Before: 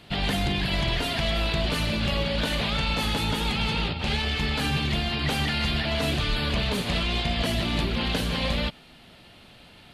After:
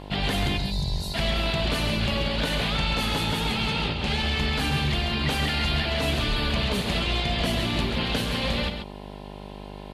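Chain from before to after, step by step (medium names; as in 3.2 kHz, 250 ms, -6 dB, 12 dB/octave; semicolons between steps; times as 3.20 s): time-frequency box 0.57–1.14 s, 200–3600 Hz -21 dB; mains buzz 50 Hz, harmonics 21, -40 dBFS -3 dB/octave; delay 135 ms -7.5 dB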